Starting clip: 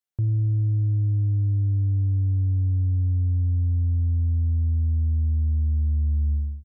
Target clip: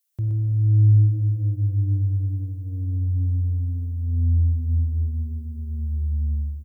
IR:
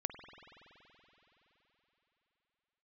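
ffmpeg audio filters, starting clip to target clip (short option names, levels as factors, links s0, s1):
-filter_complex "[0:a]highpass=66,aecho=1:1:122:0.531,crystalizer=i=5:c=0[s0];[1:a]atrim=start_sample=2205[s1];[s0][s1]afir=irnorm=-1:irlink=0"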